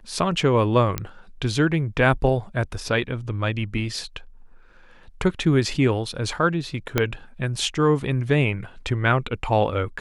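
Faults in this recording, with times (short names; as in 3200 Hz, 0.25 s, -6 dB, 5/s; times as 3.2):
0.98 pop -10 dBFS
6.98 pop -5 dBFS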